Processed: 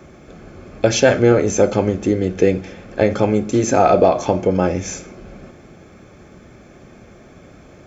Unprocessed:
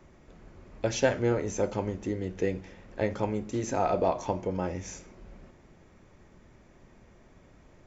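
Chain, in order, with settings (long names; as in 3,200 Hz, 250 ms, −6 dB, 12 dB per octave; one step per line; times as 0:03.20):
notch comb filter 950 Hz
boost into a limiter +16 dB
level −1 dB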